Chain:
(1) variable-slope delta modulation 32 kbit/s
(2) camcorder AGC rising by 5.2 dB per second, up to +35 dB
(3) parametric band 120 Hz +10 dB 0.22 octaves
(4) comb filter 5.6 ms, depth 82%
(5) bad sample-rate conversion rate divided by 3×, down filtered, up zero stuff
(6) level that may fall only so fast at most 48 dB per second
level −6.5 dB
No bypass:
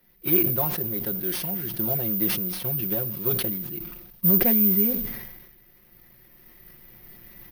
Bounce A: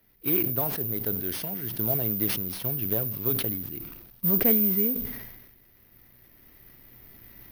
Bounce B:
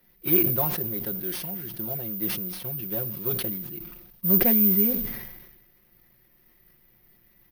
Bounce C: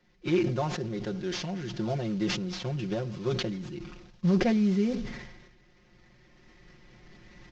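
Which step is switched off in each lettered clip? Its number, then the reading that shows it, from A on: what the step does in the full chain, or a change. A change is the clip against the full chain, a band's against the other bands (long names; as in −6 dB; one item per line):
4, change in integrated loudness −2.5 LU
2, change in integrated loudness −1.0 LU
5, 8 kHz band −7.5 dB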